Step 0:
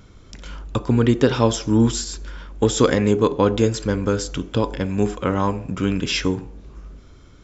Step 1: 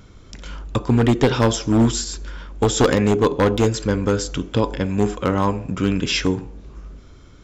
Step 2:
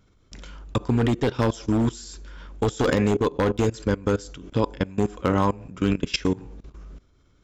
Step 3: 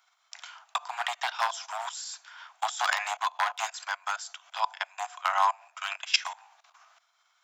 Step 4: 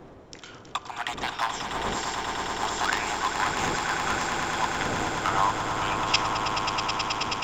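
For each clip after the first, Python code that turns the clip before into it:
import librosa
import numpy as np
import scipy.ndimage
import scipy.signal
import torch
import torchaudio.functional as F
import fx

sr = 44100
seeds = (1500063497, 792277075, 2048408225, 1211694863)

y1 = np.minimum(x, 2.0 * 10.0 ** (-10.5 / 20.0) - x)
y1 = y1 * 10.0 ** (1.5 / 20.0)
y2 = fx.level_steps(y1, sr, step_db=20)
y3 = scipy.signal.sosfilt(scipy.signal.butter(16, 680.0, 'highpass', fs=sr, output='sos'), y2)
y3 = y3 * 10.0 ** (2.5 / 20.0)
y4 = fx.dmg_wind(y3, sr, seeds[0], corner_hz=460.0, level_db=-38.0)
y4 = fx.low_shelf(y4, sr, hz=460.0, db=-4.0)
y4 = fx.echo_swell(y4, sr, ms=107, loudest=8, wet_db=-8.5)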